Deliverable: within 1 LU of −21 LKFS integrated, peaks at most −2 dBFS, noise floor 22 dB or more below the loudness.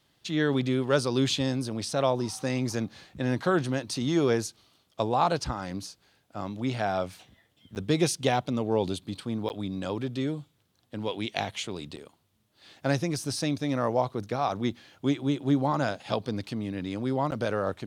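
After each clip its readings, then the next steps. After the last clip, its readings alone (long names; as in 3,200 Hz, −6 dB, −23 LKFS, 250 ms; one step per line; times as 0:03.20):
number of dropouts 4; longest dropout 9.8 ms; integrated loudness −29.0 LKFS; sample peak −8.0 dBFS; target loudness −21.0 LKFS
→ repair the gap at 0:07.75/0:09.49/0:11.96/0:17.31, 9.8 ms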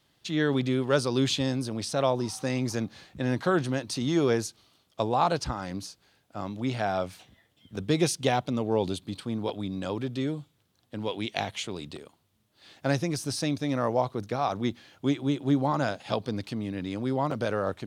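number of dropouts 0; integrated loudness −29.0 LKFS; sample peak −8.0 dBFS; target loudness −21.0 LKFS
→ level +8 dB
brickwall limiter −2 dBFS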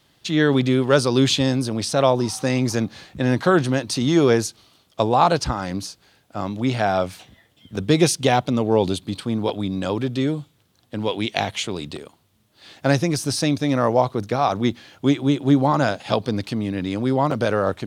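integrated loudness −21.0 LKFS; sample peak −2.0 dBFS; background noise floor −62 dBFS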